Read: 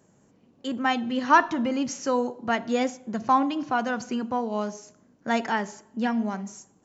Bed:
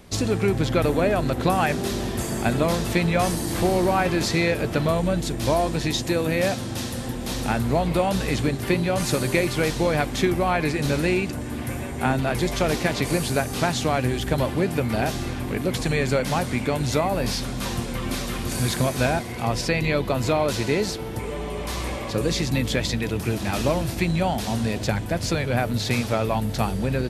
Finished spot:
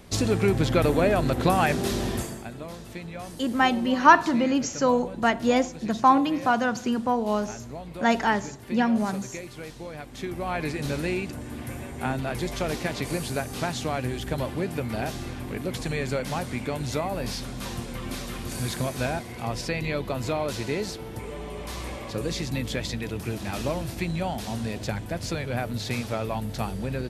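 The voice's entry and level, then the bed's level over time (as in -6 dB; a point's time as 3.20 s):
2.75 s, +3.0 dB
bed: 2.15 s -0.5 dB
2.48 s -16.5 dB
10.02 s -16.5 dB
10.58 s -6 dB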